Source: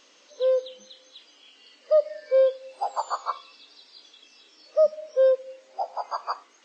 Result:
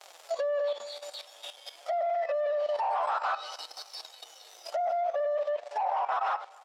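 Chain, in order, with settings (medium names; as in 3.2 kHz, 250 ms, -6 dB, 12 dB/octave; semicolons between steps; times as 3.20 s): frequency-domain pitch shifter +2 st; band-stop 6.4 kHz, Q 12; flange 0.52 Hz, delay 4.7 ms, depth 8.4 ms, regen +32%; compressor with a negative ratio -34 dBFS, ratio -1; waveshaping leveller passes 5; harmony voices +12 st -17 dB; Chebyshev high-pass 490 Hz, order 3; peaking EQ 770 Hz +12.5 dB 0.67 oct; low-pass that closes with the level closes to 2.3 kHz, closed at -15.5 dBFS; peak limiter -13.5 dBFS, peak gain reduction 7.5 dB; feedback delay 255 ms, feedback 56%, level -21 dB; level held to a coarse grid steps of 12 dB; trim -4.5 dB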